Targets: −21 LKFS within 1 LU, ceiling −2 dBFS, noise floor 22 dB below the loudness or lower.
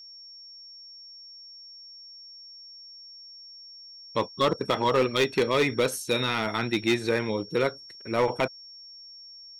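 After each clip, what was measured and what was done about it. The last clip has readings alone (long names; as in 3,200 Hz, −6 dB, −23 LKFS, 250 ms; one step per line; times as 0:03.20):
share of clipped samples 0.8%; peaks flattened at −16.5 dBFS; interfering tone 5,500 Hz; level of the tone −44 dBFS; integrated loudness −26.0 LKFS; sample peak −16.5 dBFS; target loudness −21.0 LKFS
→ clipped peaks rebuilt −16.5 dBFS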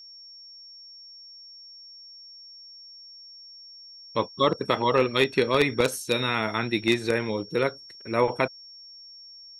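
share of clipped samples 0.0%; interfering tone 5,500 Hz; level of the tone −44 dBFS
→ notch filter 5,500 Hz, Q 30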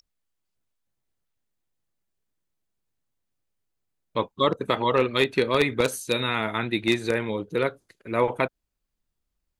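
interfering tone none found; integrated loudness −25.0 LKFS; sample peak −7.5 dBFS; target loudness −21.0 LKFS
→ level +4 dB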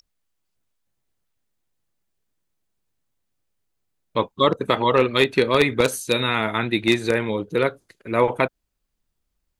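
integrated loudness −21.0 LKFS; sample peak −3.5 dBFS; background noise floor −77 dBFS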